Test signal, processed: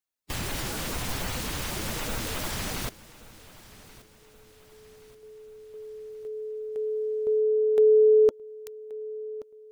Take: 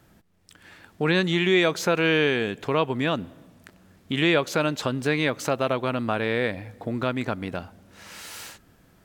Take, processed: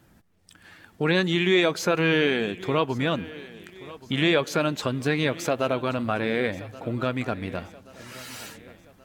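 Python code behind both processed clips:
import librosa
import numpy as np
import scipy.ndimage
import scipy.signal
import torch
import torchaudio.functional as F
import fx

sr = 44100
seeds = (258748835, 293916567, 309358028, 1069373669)

p1 = fx.spec_quant(x, sr, step_db=15)
y = p1 + fx.echo_feedback(p1, sr, ms=1128, feedback_pct=47, wet_db=-19, dry=0)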